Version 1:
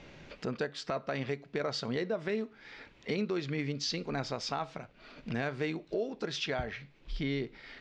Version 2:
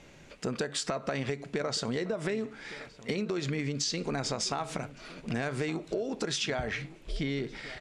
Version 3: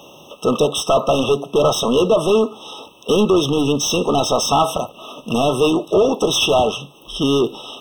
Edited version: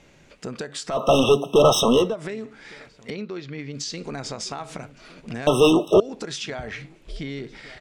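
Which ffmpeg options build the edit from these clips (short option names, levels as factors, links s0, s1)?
-filter_complex "[2:a]asplit=2[s0][s1];[1:a]asplit=4[s2][s3][s4][s5];[s2]atrim=end=1.13[s6];[s0]atrim=start=0.89:end=2.16[s7];[s3]atrim=start=1.92:end=3.102[s8];[0:a]atrim=start=3.098:end=3.732[s9];[s4]atrim=start=3.728:end=5.472[s10];[s1]atrim=start=5.468:end=6.002[s11];[s5]atrim=start=5.998[s12];[s6][s7]acrossfade=d=0.24:c1=tri:c2=tri[s13];[s13][s8]acrossfade=d=0.24:c1=tri:c2=tri[s14];[s14][s9]acrossfade=d=0.004:c1=hsin:c2=hsin[s15];[s15][s10]acrossfade=d=0.004:c1=hsin:c2=hsin[s16];[s16][s11]acrossfade=d=0.004:c1=hsin:c2=hsin[s17];[s17][s12]acrossfade=d=0.004:c1=hsin:c2=hsin"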